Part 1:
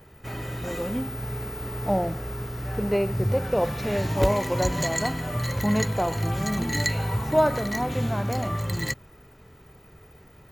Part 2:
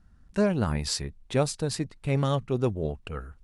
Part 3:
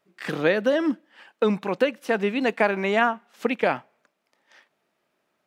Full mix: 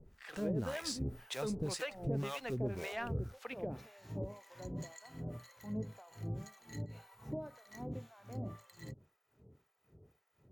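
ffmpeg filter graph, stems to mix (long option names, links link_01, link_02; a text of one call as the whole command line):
ffmpeg -i stem1.wav -i stem2.wav -i stem3.wav -filter_complex "[0:a]acompressor=threshold=-25dB:ratio=6,highpass=74,aeval=exprs='val(0)*pow(10,-18*(0.5-0.5*cos(2*PI*1.9*n/s))/20)':channel_layout=same,volume=-6dB[link_01];[1:a]acrusher=bits=4:mode=log:mix=0:aa=0.000001,volume=-2.5dB[link_02];[2:a]dynaudnorm=framelen=220:gausssize=3:maxgain=9dB,volume=-18dB[link_03];[link_01][link_02]amix=inputs=2:normalize=0,equalizer=frequency=6400:width_type=o:width=0.77:gain=3,alimiter=limit=-23.5dB:level=0:latency=1:release=117,volume=0dB[link_04];[link_03][link_04]amix=inputs=2:normalize=0,asoftclip=type=tanh:threshold=-20.5dB,acrossover=split=560[link_05][link_06];[link_05]aeval=exprs='val(0)*(1-1/2+1/2*cos(2*PI*1.9*n/s))':channel_layout=same[link_07];[link_06]aeval=exprs='val(0)*(1-1/2-1/2*cos(2*PI*1.9*n/s))':channel_layout=same[link_08];[link_07][link_08]amix=inputs=2:normalize=0" out.wav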